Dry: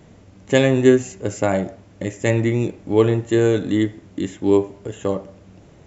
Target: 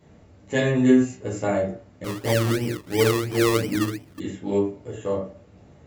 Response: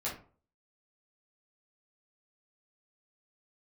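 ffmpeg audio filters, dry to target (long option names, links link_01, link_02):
-filter_complex "[1:a]atrim=start_sample=2205,afade=type=out:start_time=0.17:duration=0.01,atrim=end_sample=7938[link_01];[0:a][link_01]afir=irnorm=-1:irlink=0,asettb=1/sr,asplit=3[link_02][link_03][link_04];[link_02]atrim=end=2.044[link_05];[link_03]atrim=start=2.04:end=4.2,asetpts=PTS-STARTPTS,afade=type=in:duration=0.004:curve=qsin,afade=type=out:start_time=2.156:duration=0.004:curve=qsin,acrusher=samples=23:mix=1:aa=0.000001:lfo=1:lforange=13.8:lforate=2.9[link_06];[link_04]atrim=start=4.196[link_07];[link_05][link_06]acrossfade=duration=0.004:curve1=hsin:curve2=qsin[link_08];[link_08][link_07]acrossfade=duration=0.004:curve1=qsin:curve2=hsin,volume=-7.5dB"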